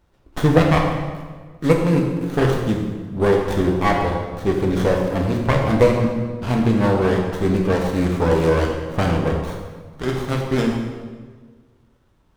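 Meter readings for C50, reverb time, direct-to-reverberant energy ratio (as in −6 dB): 3.5 dB, 1.5 s, 0.5 dB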